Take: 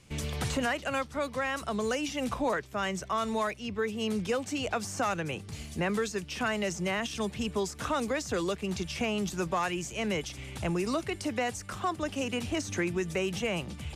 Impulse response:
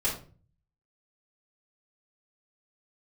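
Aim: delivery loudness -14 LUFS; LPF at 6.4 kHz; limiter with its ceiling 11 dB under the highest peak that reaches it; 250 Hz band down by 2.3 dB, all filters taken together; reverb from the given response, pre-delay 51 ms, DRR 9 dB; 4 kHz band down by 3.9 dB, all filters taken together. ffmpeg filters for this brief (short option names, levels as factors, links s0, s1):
-filter_complex "[0:a]lowpass=6400,equalizer=f=250:t=o:g=-3,equalizer=f=4000:t=o:g=-5.5,alimiter=level_in=2.24:limit=0.0631:level=0:latency=1,volume=0.447,asplit=2[s0][s1];[1:a]atrim=start_sample=2205,adelay=51[s2];[s1][s2]afir=irnorm=-1:irlink=0,volume=0.141[s3];[s0][s3]amix=inputs=2:normalize=0,volume=16.8"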